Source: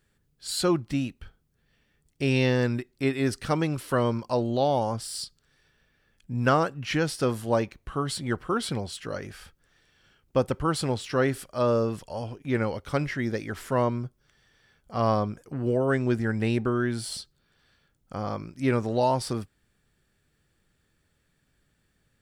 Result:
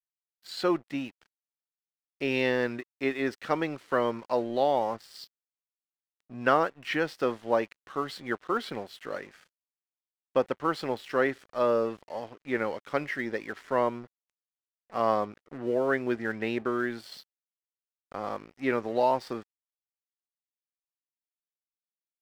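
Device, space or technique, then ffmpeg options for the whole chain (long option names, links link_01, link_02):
pocket radio on a weak battery: -af "highpass=310,lowpass=3500,aeval=exprs='sgn(val(0))*max(abs(val(0))-0.00316,0)':channel_layout=same,equalizer=frequency=1900:width_type=o:width=0.24:gain=4"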